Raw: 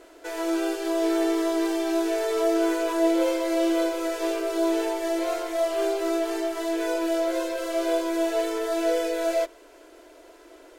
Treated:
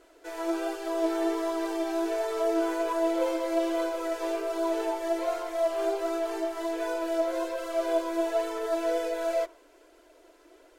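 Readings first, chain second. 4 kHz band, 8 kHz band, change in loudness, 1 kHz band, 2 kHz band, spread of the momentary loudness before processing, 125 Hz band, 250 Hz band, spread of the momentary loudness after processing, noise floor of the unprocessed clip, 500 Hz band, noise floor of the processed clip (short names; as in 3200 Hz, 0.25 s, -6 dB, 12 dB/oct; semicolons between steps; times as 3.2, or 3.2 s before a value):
-6.5 dB, -7.0 dB, -4.0 dB, -1.5 dB, -5.0 dB, 5 LU, n/a, -6.0 dB, 4 LU, -51 dBFS, -3.0 dB, -58 dBFS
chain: dynamic EQ 900 Hz, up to +7 dB, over -38 dBFS, Q 0.93; flange 1.3 Hz, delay 0.6 ms, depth 3.4 ms, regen +67%; gain -3 dB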